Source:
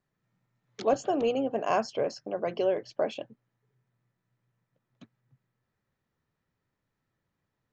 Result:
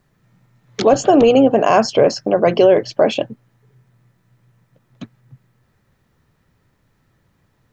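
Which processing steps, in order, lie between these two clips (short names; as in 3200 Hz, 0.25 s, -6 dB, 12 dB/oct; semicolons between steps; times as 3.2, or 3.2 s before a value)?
low shelf 150 Hz +6.5 dB; maximiser +19 dB; gain -1.5 dB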